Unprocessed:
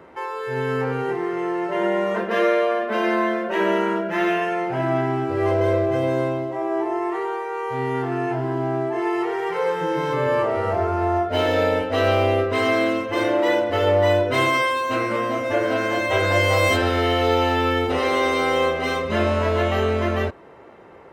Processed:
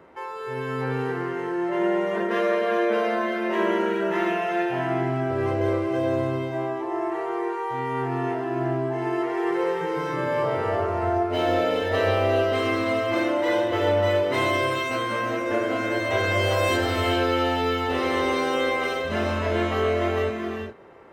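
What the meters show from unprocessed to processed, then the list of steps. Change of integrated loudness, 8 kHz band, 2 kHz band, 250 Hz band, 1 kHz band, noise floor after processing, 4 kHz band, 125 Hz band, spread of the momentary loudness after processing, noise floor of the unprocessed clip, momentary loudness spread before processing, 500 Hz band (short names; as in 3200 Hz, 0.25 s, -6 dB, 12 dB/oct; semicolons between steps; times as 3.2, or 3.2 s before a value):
-3.0 dB, n/a, -3.0 dB, -2.0 dB, -3.0 dB, -31 dBFS, -3.0 dB, -3.5 dB, 6 LU, -30 dBFS, 6 LU, -3.0 dB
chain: non-linear reverb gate 0.44 s rising, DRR 2.5 dB; gain -5 dB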